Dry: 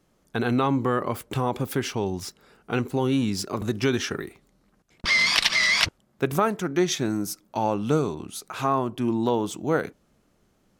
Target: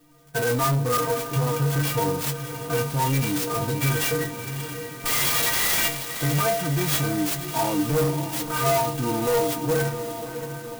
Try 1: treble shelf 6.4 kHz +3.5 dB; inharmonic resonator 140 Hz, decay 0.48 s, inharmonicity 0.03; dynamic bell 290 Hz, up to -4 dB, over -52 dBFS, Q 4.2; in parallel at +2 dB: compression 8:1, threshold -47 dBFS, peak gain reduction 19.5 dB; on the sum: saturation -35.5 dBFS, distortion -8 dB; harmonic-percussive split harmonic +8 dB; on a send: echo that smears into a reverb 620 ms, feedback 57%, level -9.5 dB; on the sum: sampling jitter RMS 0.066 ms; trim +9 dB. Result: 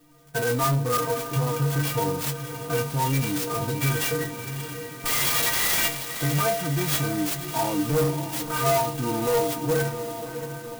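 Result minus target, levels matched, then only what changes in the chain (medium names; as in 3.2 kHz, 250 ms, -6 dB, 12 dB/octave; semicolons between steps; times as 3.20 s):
compression: peak gain reduction +8.5 dB
change: compression 8:1, threshold -37.5 dBFS, peak gain reduction 11 dB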